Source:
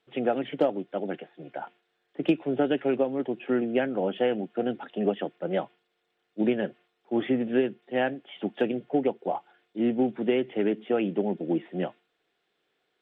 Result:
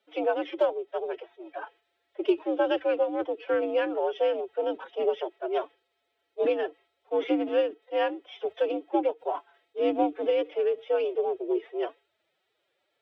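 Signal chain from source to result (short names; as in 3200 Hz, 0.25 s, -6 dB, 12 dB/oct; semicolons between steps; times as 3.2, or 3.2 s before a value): formant-preserving pitch shift +9.5 st; frequency shift +75 Hz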